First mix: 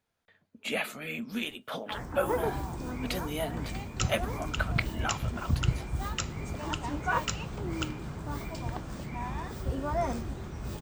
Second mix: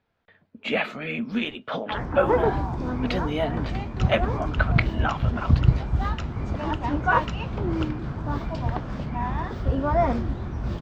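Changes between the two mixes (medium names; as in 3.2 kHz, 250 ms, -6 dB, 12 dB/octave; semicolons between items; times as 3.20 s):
speech +8.5 dB; first sound +9.5 dB; master: add distance through air 230 m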